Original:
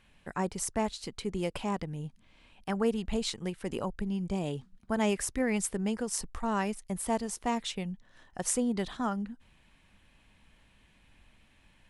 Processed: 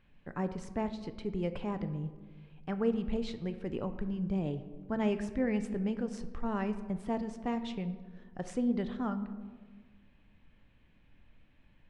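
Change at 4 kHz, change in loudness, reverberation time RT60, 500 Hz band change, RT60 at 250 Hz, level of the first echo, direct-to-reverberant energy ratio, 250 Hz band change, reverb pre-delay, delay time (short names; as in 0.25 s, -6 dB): -10.5 dB, -2.5 dB, 1.5 s, -2.5 dB, 1.6 s, none, 9.0 dB, -0.5 dB, 4 ms, none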